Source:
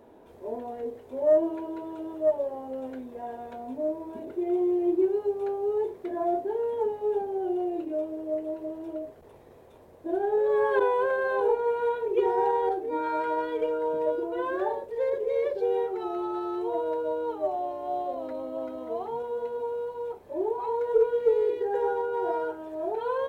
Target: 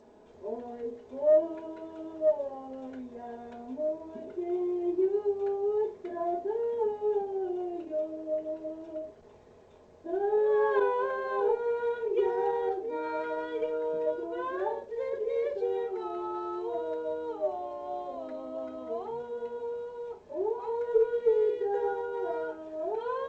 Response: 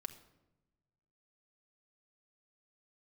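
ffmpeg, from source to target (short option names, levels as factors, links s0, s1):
-filter_complex "[1:a]atrim=start_sample=2205,atrim=end_sample=3087[s0];[0:a][s0]afir=irnorm=-1:irlink=0" -ar 16000 -c:a g722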